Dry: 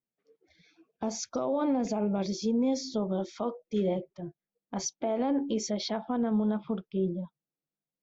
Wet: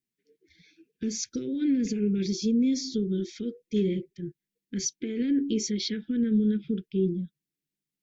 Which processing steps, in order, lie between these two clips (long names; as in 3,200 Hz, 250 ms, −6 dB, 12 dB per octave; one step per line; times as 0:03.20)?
inverse Chebyshev band-stop filter 590–1,200 Hz, stop band 40 dB
level +4 dB